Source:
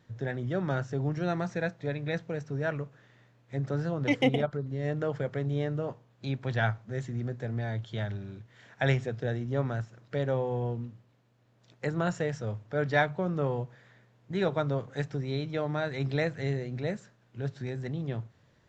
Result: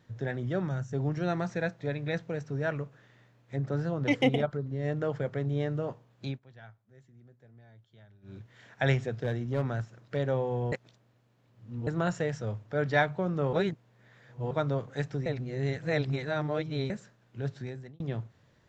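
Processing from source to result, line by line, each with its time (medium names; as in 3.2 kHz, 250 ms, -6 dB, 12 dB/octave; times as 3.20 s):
0.68–0.93 s: time-frequency box 250–5500 Hz -9 dB
3.56–5.60 s: tape noise reduction on one side only decoder only
6.26–8.36 s: dip -23 dB, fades 0.14 s
9.11–10.17 s: hard clipper -22.5 dBFS
10.72–11.87 s: reverse
13.53–14.51 s: reverse
15.26–16.90 s: reverse
17.54–18.00 s: fade out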